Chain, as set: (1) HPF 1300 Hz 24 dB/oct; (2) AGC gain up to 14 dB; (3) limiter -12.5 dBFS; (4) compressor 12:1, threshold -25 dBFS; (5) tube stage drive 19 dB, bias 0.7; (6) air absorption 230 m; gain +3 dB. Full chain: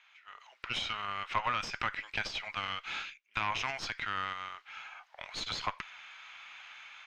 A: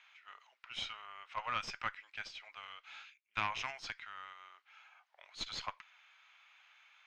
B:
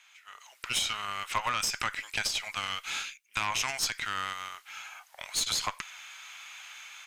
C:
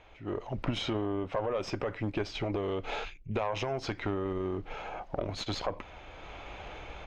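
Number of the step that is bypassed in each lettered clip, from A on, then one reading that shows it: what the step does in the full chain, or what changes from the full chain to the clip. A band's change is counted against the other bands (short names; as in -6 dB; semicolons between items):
2, crest factor change +4.5 dB; 6, 8 kHz band +16.5 dB; 1, 250 Hz band +19.5 dB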